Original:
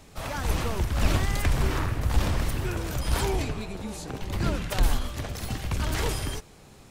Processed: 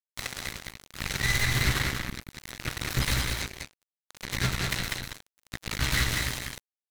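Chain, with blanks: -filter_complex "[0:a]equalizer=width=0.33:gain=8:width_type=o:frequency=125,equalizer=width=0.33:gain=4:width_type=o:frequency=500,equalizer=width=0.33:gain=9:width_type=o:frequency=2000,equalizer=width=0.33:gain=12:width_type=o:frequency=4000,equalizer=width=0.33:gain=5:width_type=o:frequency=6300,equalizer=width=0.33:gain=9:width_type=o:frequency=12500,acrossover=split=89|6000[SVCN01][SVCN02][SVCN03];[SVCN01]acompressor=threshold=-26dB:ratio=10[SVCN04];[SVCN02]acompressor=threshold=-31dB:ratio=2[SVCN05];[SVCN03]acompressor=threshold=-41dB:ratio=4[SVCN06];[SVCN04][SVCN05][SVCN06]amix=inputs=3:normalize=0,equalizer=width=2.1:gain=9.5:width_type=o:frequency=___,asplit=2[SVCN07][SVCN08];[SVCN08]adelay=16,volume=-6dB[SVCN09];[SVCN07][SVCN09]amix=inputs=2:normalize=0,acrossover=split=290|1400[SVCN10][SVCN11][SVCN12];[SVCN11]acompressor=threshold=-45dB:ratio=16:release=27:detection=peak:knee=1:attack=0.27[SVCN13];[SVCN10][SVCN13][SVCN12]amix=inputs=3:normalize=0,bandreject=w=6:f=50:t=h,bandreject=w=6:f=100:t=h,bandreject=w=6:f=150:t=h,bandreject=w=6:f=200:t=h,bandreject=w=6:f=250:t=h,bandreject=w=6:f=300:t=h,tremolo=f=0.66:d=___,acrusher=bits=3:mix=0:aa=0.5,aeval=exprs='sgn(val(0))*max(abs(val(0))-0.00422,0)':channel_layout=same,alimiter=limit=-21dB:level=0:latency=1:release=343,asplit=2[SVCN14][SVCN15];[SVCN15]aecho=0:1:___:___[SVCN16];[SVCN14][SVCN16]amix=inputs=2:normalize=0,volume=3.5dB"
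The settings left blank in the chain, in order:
1400, 0.67, 196, 0.631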